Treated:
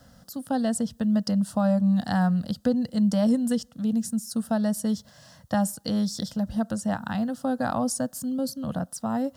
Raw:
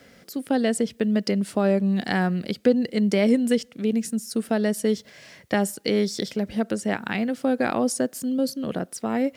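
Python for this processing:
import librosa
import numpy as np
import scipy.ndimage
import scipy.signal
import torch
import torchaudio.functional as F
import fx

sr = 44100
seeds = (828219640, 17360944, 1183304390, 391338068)

y = fx.low_shelf(x, sr, hz=170.0, db=10.0)
y = fx.fixed_phaser(y, sr, hz=940.0, stages=4)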